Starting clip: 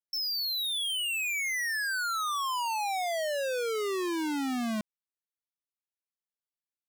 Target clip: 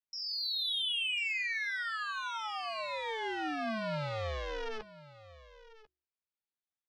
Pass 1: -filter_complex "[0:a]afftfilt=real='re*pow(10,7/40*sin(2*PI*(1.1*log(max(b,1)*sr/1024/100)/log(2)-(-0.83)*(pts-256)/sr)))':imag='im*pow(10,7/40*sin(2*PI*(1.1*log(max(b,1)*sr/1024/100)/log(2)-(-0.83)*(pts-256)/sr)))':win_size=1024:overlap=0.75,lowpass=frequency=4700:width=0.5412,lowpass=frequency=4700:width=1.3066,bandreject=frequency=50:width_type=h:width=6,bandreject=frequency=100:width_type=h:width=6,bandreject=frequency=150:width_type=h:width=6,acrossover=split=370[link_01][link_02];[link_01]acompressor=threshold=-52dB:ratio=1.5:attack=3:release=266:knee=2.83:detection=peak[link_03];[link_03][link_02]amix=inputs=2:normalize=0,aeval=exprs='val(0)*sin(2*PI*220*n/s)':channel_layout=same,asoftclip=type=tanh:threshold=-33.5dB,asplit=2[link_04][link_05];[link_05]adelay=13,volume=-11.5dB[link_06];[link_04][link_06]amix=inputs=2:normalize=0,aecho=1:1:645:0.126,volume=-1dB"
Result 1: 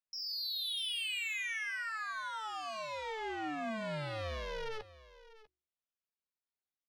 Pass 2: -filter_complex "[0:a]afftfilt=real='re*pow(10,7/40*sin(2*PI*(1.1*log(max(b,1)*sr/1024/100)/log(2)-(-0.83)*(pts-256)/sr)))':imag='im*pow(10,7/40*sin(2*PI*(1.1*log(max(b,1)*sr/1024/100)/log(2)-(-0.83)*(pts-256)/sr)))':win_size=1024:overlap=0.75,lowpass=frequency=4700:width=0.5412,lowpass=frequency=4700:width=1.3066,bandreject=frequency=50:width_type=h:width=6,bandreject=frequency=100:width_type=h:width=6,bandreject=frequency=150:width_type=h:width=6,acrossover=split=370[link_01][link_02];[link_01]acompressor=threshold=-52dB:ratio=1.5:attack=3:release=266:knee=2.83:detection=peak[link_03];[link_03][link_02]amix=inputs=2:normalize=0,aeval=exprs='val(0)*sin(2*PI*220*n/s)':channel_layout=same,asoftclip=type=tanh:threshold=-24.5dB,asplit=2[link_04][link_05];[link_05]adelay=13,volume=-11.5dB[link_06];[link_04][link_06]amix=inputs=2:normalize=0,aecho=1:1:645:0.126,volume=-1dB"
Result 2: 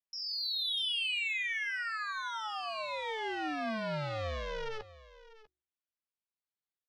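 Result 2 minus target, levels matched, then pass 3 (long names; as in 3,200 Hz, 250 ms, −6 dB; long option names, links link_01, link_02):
echo 398 ms early
-filter_complex "[0:a]afftfilt=real='re*pow(10,7/40*sin(2*PI*(1.1*log(max(b,1)*sr/1024/100)/log(2)-(-0.83)*(pts-256)/sr)))':imag='im*pow(10,7/40*sin(2*PI*(1.1*log(max(b,1)*sr/1024/100)/log(2)-(-0.83)*(pts-256)/sr)))':win_size=1024:overlap=0.75,lowpass=frequency=4700:width=0.5412,lowpass=frequency=4700:width=1.3066,bandreject=frequency=50:width_type=h:width=6,bandreject=frequency=100:width_type=h:width=6,bandreject=frequency=150:width_type=h:width=6,acrossover=split=370[link_01][link_02];[link_01]acompressor=threshold=-52dB:ratio=1.5:attack=3:release=266:knee=2.83:detection=peak[link_03];[link_03][link_02]amix=inputs=2:normalize=0,aeval=exprs='val(0)*sin(2*PI*220*n/s)':channel_layout=same,asoftclip=type=tanh:threshold=-24.5dB,asplit=2[link_04][link_05];[link_05]adelay=13,volume=-11.5dB[link_06];[link_04][link_06]amix=inputs=2:normalize=0,aecho=1:1:1043:0.126,volume=-1dB"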